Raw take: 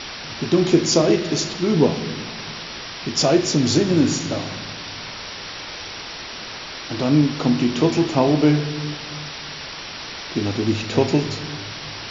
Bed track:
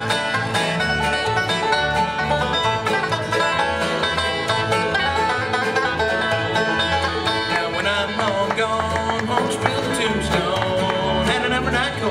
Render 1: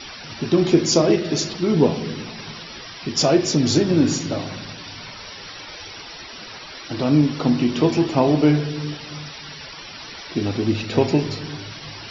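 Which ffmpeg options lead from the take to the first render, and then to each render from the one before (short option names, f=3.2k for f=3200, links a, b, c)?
-af "afftdn=nr=12:nf=-34"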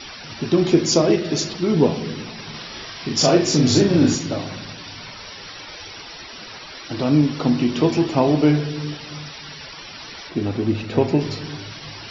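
-filter_complex "[0:a]asettb=1/sr,asplit=3[a][b][c];[a]atrim=end=2.504[d];[b]atrim=start=2.5:end=4.15,asetpts=PTS-STARTPTS,afade=t=in:d=0.004:c=qsin,afade=t=out:st=1.646:d=0.004:c=qsin,asplit=2[e][f];[f]adelay=40,volume=-2dB[g];[e][g]amix=inputs=2:normalize=0,atrim=end_sample=72765[h];[c]atrim=start=4.146[i];[d][h]acrossfade=d=0.004:c1=hsin:c2=qsin[j];[j][i]acrossfade=d=0.004:c1=qsin:c2=hsin,asettb=1/sr,asplit=3[k][l][m];[k]atrim=end=10.294[n];[l]atrim=start=10.29:end=11.21,asetpts=PTS-STARTPTS,afade=t=in:d=0.004:c=qsin,afade=t=out:st=0.916:d=0.004:c=qsin,highshelf=f=3.1k:g=-9[o];[m]atrim=start=11.206[p];[n][o]acrossfade=d=0.004:c1=hsin:c2=qsin[q];[q][p]acrossfade=d=0.004:c1=qsin:c2=hsin"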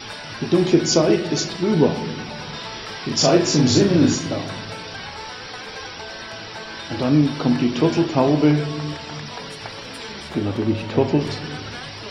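-filter_complex "[1:a]volume=-16.5dB[a];[0:a][a]amix=inputs=2:normalize=0"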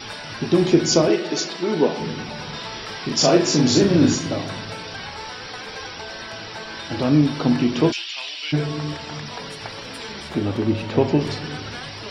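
-filter_complex "[0:a]asettb=1/sr,asplit=3[a][b][c];[a]atrim=end=1.084[d];[b]atrim=start=1.08:end=2,asetpts=PTS-STARTPTS,afade=t=in:d=0.004:c=qsin,afade=t=out:st=0.916:d=0.004:c=qsin,highpass=290,lowpass=7.7k[e];[c]atrim=start=1.996[f];[d][e]acrossfade=d=0.004:c1=hsin:c2=qsin[g];[g][f]acrossfade=d=0.004:c1=qsin:c2=hsin,asettb=1/sr,asplit=3[h][i][j];[h]atrim=end=3.104[k];[i]atrim=start=3.1:end=3.84,asetpts=PTS-STARTPTS,afade=t=in:d=0.004:c=qsin,afade=t=out:st=0.736:d=0.004:c=qsin,highpass=140[l];[j]atrim=start=3.836[m];[k][l]acrossfade=d=0.004:c1=hsin:c2=qsin[n];[n][m]acrossfade=d=0.004:c1=qsin:c2=hsin,asplit=3[o][p][q];[o]afade=t=out:st=7.91:d=0.02[r];[p]highpass=f=2.9k:t=q:w=2.5,afade=t=in:st=7.91:d=0.02,afade=t=out:st=8.52:d=0.02[s];[q]afade=t=in:st=8.52:d=0.02[t];[r][s][t]amix=inputs=3:normalize=0"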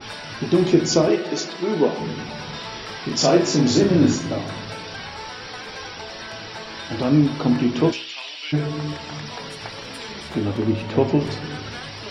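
-af "bandreject=f=64.41:t=h:w=4,bandreject=f=128.82:t=h:w=4,bandreject=f=193.23:t=h:w=4,bandreject=f=257.64:t=h:w=4,bandreject=f=322.05:t=h:w=4,bandreject=f=386.46:t=h:w=4,bandreject=f=450.87:t=h:w=4,bandreject=f=515.28:t=h:w=4,bandreject=f=579.69:t=h:w=4,bandreject=f=644.1:t=h:w=4,bandreject=f=708.51:t=h:w=4,bandreject=f=772.92:t=h:w=4,bandreject=f=837.33:t=h:w=4,bandreject=f=901.74:t=h:w=4,bandreject=f=966.15:t=h:w=4,bandreject=f=1.03056k:t=h:w=4,bandreject=f=1.09497k:t=h:w=4,bandreject=f=1.15938k:t=h:w=4,bandreject=f=1.22379k:t=h:w=4,bandreject=f=1.2882k:t=h:w=4,bandreject=f=1.35261k:t=h:w=4,bandreject=f=1.41702k:t=h:w=4,bandreject=f=1.48143k:t=h:w=4,bandreject=f=1.54584k:t=h:w=4,bandreject=f=1.61025k:t=h:w=4,bandreject=f=1.67466k:t=h:w=4,bandreject=f=1.73907k:t=h:w=4,adynamicequalizer=threshold=0.0178:dfrequency=2200:dqfactor=0.7:tfrequency=2200:tqfactor=0.7:attack=5:release=100:ratio=0.375:range=2:mode=cutabove:tftype=highshelf"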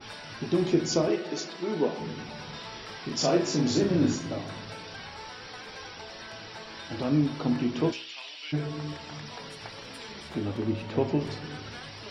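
-af "volume=-8dB"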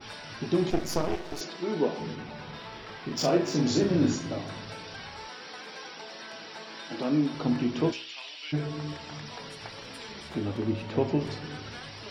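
-filter_complex "[0:a]asettb=1/sr,asplit=3[a][b][c];[a]atrim=end=0.704[d];[b]atrim=start=0.7:end=1.41,asetpts=PTS-STARTPTS,afade=t=in:d=0.004:c=qsin,afade=t=out:st=0.706:d=0.004:c=qsin,aeval=exprs='max(val(0),0)':c=same[e];[c]atrim=start=1.406[f];[d][e]acrossfade=d=0.004:c1=hsin:c2=qsin[g];[g][f]acrossfade=d=0.004:c1=qsin:c2=hsin,asettb=1/sr,asplit=3[h][i][j];[h]atrim=end=2.154[k];[i]atrim=start=2.15:end=3.55,asetpts=PTS-STARTPTS,afade=t=in:d=0.004:c=qsin,afade=t=out:st=1.396:d=0.004:c=qsin,adynamicsmooth=sensitivity=3.5:basefreq=4k[l];[j]atrim=start=3.546[m];[k][l]acrossfade=d=0.004:c1=hsin:c2=qsin[n];[n][m]acrossfade=d=0.004:c1=qsin:c2=hsin,asettb=1/sr,asplit=3[o][p][q];[o]atrim=end=5.274[r];[p]atrim=start=5.27:end=7.35,asetpts=PTS-STARTPTS,afade=t=in:d=0.004:c=qsin,afade=t=out:st=2.076:d=0.004:c=qsin,highpass=f=170:w=0.5412,highpass=f=170:w=1.3066[s];[q]atrim=start=7.346[t];[r][s]acrossfade=d=0.004:c1=hsin:c2=qsin[u];[u][t]acrossfade=d=0.004:c1=qsin:c2=hsin"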